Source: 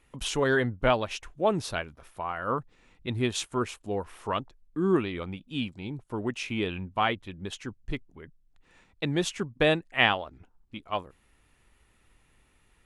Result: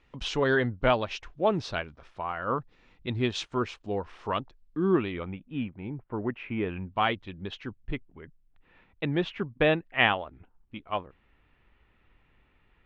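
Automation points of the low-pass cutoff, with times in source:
low-pass 24 dB/octave
4.78 s 5.3 kHz
5.47 s 2.2 kHz
6.72 s 2.2 kHz
7.10 s 5.3 kHz
7.96 s 3.2 kHz

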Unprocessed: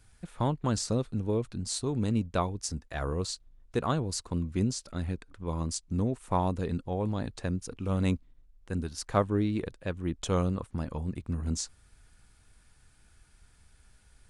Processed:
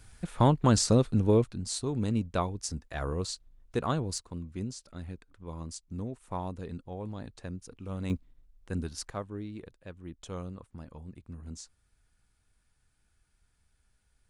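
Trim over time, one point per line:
+6 dB
from 1.44 s -1 dB
from 4.18 s -8 dB
from 8.10 s -1 dB
from 9.10 s -11.5 dB

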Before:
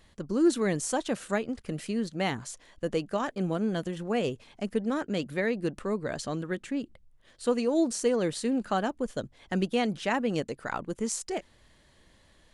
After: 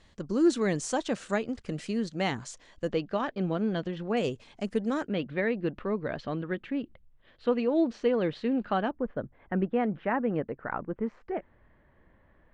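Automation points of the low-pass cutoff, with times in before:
low-pass 24 dB/octave
7.7 kHz
from 2.92 s 4.5 kHz
from 4.17 s 8.3 kHz
from 5.08 s 3.4 kHz
from 8.91 s 1.9 kHz

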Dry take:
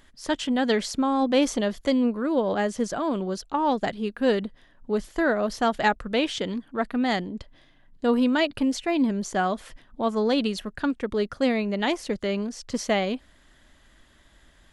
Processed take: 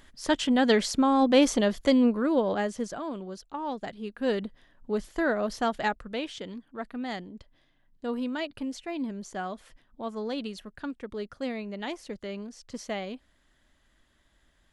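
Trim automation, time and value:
2.18 s +1 dB
3.22 s -10 dB
3.87 s -10 dB
4.45 s -3.5 dB
5.58 s -3.5 dB
6.30 s -10 dB

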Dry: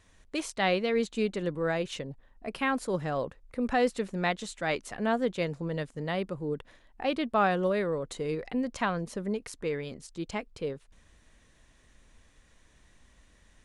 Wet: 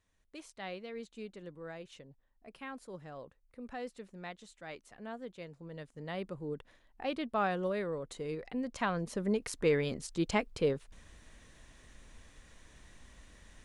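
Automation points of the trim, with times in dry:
5.51 s -16 dB
6.27 s -6.5 dB
8.55 s -6.5 dB
9.69 s +4 dB

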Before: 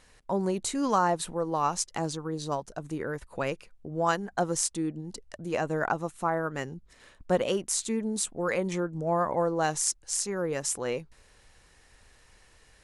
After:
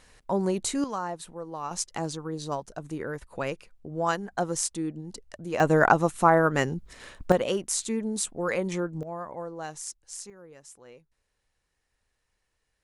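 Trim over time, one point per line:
+2 dB
from 0.84 s -8 dB
from 1.71 s -0.5 dB
from 5.60 s +9 dB
from 7.32 s +0.5 dB
from 9.03 s -10 dB
from 10.30 s -19 dB

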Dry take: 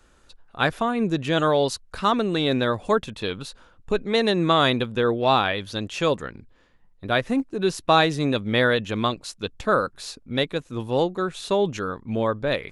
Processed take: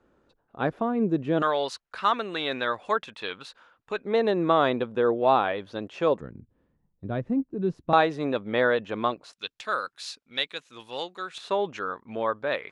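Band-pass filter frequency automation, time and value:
band-pass filter, Q 0.69
340 Hz
from 1.42 s 1.6 kHz
from 4.05 s 600 Hz
from 6.21 s 150 Hz
from 7.93 s 740 Hz
from 9.33 s 3.3 kHz
from 11.38 s 1.2 kHz

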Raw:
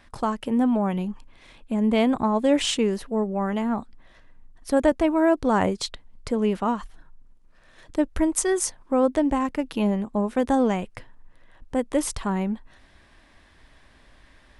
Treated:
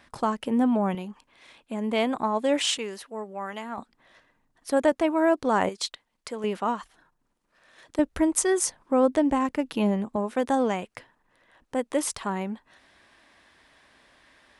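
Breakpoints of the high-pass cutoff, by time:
high-pass 6 dB/octave
150 Hz
from 0.95 s 500 Hz
from 2.78 s 1.3 kHz
from 3.78 s 360 Hz
from 5.69 s 1.1 kHz
from 6.44 s 440 Hz
from 7.99 s 120 Hz
from 10.16 s 370 Hz

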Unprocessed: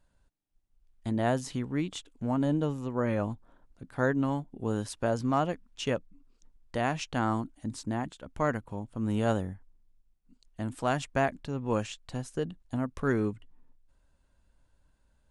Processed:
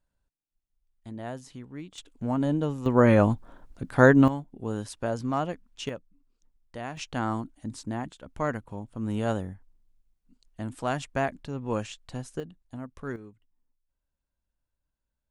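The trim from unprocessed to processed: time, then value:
-9.5 dB
from 1.98 s +1.5 dB
from 2.86 s +10.5 dB
from 4.28 s -1 dB
from 5.89 s -7.5 dB
from 6.97 s -0.5 dB
from 12.40 s -7.5 dB
from 13.16 s -17 dB

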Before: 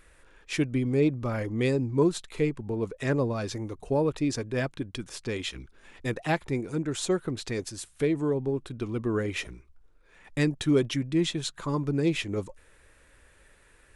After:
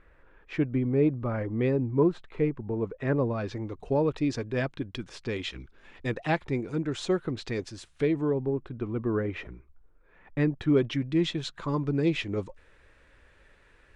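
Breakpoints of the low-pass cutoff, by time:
3.04 s 1.8 kHz
3.90 s 4.4 kHz
8.03 s 4.4 kHz
8.57 s 1.8 kHz
10.50 s 1.8 kHz
11.12 s 4.3 kHz

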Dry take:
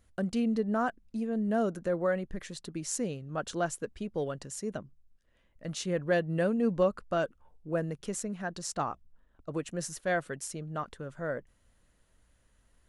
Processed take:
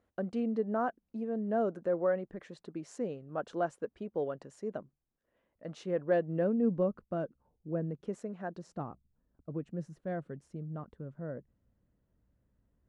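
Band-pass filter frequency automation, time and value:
band-pass filter, Q 0.68
6.04 s 540 Hz
6.88 s 210 Hz
7.86 s 210 Hz
8.33 s 600 Hz
8.87 s 160 Hz

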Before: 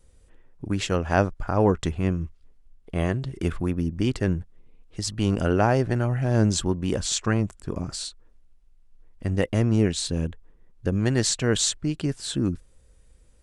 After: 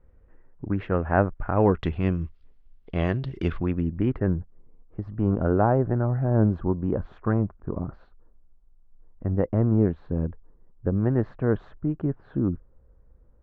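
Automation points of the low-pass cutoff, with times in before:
low-pass 24 dB/octave
1.25 s 1.8 kHz
2.13 s 4.2 kHz
3.45 s 4.2 kHz
3.93 s 2.2 kHz
4.38 s 1.3 kHz

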